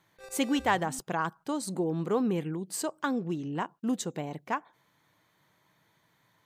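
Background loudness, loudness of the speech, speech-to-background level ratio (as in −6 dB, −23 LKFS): −47.5 LKFS, −31.5 LKFS, 16.0 dB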